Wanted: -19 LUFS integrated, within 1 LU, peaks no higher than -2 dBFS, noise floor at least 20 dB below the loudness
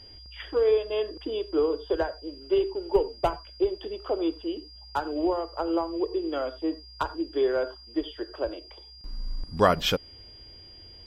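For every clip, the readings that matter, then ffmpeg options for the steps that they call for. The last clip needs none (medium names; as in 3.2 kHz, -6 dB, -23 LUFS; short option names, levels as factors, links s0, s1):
steady tone 4.8 kHz; tone level -47 dBFS; loudness -28.5 LUFS; peak level -6.5 dBFS; loudness target -19.0 LUFS
-> -af "bandreject=f=4800:w=30"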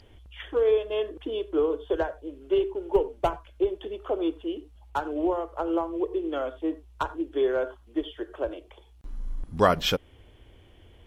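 steady tone not found; loudness -28.5 LUFS; peak level -6.5 dBFS; loudness target -19.0 LUFS
-> -af "volume=2.99,alimiter=limit=0.794:level=0:latency=1"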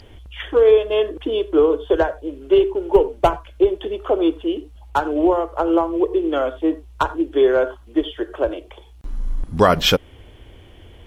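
loudness -19.0 LUFS; peak level -2.0 dBFS; noise floor -45 dBFS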